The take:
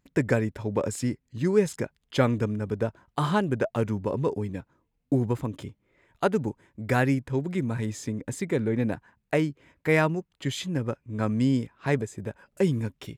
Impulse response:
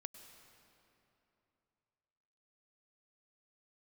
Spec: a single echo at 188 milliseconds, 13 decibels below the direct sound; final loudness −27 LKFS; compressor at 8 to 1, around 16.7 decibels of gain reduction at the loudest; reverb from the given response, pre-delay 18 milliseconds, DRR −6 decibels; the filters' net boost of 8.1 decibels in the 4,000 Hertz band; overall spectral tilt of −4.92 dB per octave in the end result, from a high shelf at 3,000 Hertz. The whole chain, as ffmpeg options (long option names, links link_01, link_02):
-filter_complex "[0:a]highshelf=frequency=3000:gain=8,equalizer=frequency=4000:width_type=o:gain=4.5,acompressor=threshold=-34dB:ratio=8,aecho=1:1:188:0.224,asplit=2[link_01][link_02];[1:a]atrim=start_sample=2205,adelay=18[link_03];[link_02][link_03]afir=irnorm=-1:irlink=0,volume=10.5dB[link_04];[link_01][link_04]amix=inputs=2:normalize=0,volume=4.5dB"